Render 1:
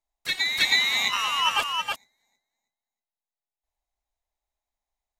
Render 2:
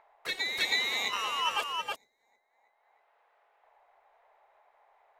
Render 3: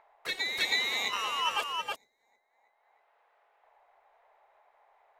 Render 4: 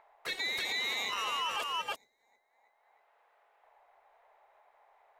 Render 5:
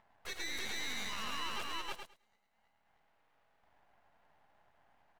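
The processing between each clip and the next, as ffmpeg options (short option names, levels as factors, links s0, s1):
-filter_complex "[0:a]equalizer=f=450:w=1.3:g=14.5,acrossover=split=710|2100[s0][s1][s2];[s0]alimiter=level_in=2.24:limit=0.0631:level=0:latency=1,volume=0.447[s3];[s1]acompressor=mode=upward:threshold=0.0398:ratio=2.5[s4];[s3][s4][s2]amix=inputs=3:normalize=0,volume=0.398"
-af anull
-af "alimiter=level_in=1.06:limit=0.0631:level=0:latency=1:release=15,volume=0.944"
-filter_complex "[0:a]aeval=exprs='max(val(0),0)':c=same,asplit=2[s0][s1];[s1]aecho=0:1:106|212|318:0.501|0.0802|0.0128[s2];[s0][s2]amix=inputs=2:normalize=0,volume=0.708"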